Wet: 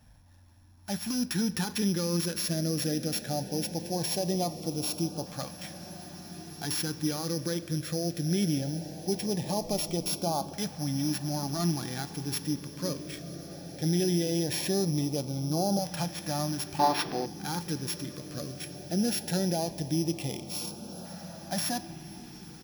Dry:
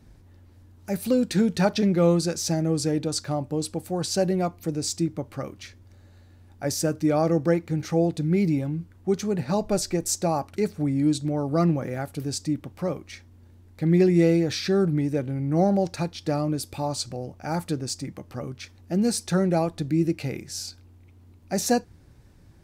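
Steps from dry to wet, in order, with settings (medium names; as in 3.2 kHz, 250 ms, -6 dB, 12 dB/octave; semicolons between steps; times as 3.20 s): sorted samples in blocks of 8 samples; bass shelf 280 Hz -8.5 dB; comb 1.2 ms, depth 32%; peak limiter -19.5 dBFS, peak gain reduction 11.5 dB; echo that smears into a reverb 1844 ms, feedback 56%, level -13 dB; reverberation RT60 3.1 s, pre-delay 6 ms, DRR 16 dB; LFO notch saw up 0.19 Hz 360–2000 Hz; 16.79–17.26 s: graphic EQ 125/250/500/1000/2000/4000/8000 Hz -7/+4/+12/+7/+7/+7/-9 dB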